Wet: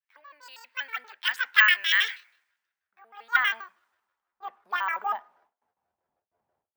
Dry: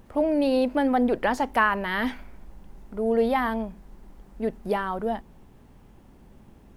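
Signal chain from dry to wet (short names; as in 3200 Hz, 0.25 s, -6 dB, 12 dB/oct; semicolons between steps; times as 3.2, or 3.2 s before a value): trilling pitch shifter +10 st, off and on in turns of 80 ms; gate with hold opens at -42 dBFS; compressor 2:1, threshold -38 dBFS, peak gain reduction 12 dB; dynamic EQ 2700 Hz, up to +6 dB, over -49 dBFS, Q 0.85; high-pass sweep 1800 Hz -> 700 Hz, 2.53–6.14; careless resampling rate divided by 2×, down filtered, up hold; on a send at -19 dB: reverb RT60 0.50 s, pre-delay 3 ms; on the sum: three-band expander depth 100%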